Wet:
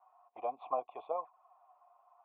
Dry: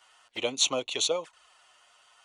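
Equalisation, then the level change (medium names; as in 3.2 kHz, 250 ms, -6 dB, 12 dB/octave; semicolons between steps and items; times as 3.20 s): cascade formant filter a; bass shelf 160 Hz -10.5 dB; treble shelf 2.2 kHz -9 dB; +10.5 dB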